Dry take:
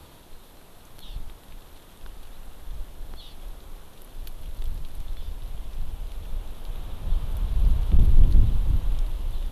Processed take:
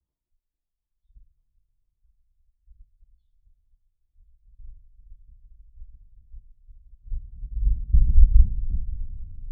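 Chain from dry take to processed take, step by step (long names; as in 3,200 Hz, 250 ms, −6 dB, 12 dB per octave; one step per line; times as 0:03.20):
expanding power law on the bin magnitudes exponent 2.2
power curve on the samples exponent 2
coupled-rooms reverb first 0.23 s, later 4.9 s, from −21 dB, DRR −2 dB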